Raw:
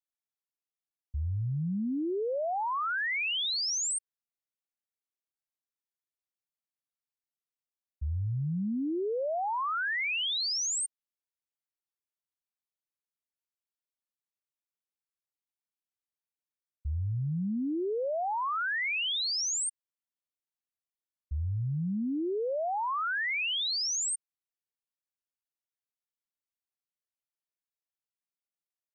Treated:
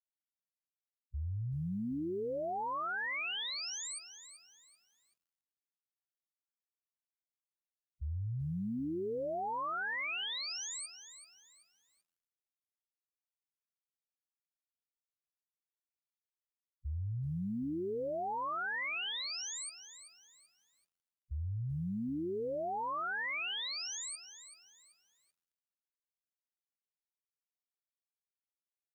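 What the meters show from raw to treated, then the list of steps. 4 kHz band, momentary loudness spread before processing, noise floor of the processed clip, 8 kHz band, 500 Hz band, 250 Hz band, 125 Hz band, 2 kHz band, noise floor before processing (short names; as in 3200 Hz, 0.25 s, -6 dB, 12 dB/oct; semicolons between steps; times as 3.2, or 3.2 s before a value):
-8.0 dB, 7 LU, under -85 dBFS, -11.0 dB, -5.5 dB, -5.5 dB, -5.5 dB, -6.0 dB, under -85 dBFS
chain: loudest bins only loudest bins 4; in parallel at 0 dB: limiter -39 dBFS, peak gain reduction 11.5 dB; on the sum: loudest bins only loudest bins 64; lo-fi delay 0.384 s, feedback 35%, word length 10-bit, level -12 dB; gain -8 dB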